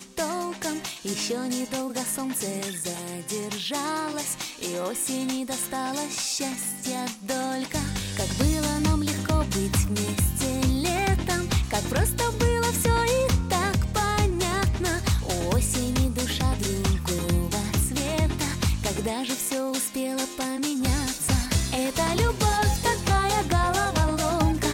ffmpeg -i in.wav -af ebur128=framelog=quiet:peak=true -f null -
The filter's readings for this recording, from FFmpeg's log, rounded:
Integrated loudness:
  I:         -25.6 LUFS
  Threshold: -35.6 LUFS
Loudness range:
  LRA:         5.1 LU
  Threshold: -45.7 LUFS
  LRA low:   -28.9 LUFS
  LRA high:  -23.8 LUFS
True peak:
  Peak:      -11.1 dBFS